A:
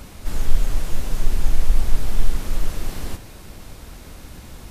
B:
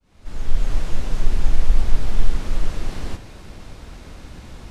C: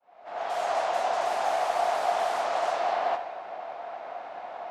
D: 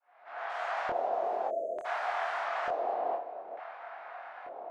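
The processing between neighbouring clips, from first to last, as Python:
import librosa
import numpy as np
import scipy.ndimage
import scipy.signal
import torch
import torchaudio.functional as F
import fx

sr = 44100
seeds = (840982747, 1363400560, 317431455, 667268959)

y1 = fx.fade_in_head(x, sr, length_s=0.74)
y1 = fx.air_absorb(y1, sr, metres=63.0)
y1 = F.gain(torch.from_numpy(y1), 1.0).numpy()
y2 = fx.env_lowpass(y1, sr, base_hz=2000.0, full_db=-7.0)
y2 = fx.dynamic_eq(y2, sr, hz=1100.0, q=0.71, threshold_db=-49.0, ratio=4.0, max_db=6)
y2 = fx.highpass_res(y2, sr, hz=700.0, q=8.6)
y3 = fx.spec_erase(y2, sr, start_s=1.48, length_s=0.37, low_hz=700.0, high_hz=6200.0)
y3 = fx.filter_lfo_bandpass(y3, sr, shape='square', hz=0.56, low_hz=420.0, high_hz=1600.0, q=1.7)
y3 = fx.doubler(y3, sr, ms=25.0, db=-2.5)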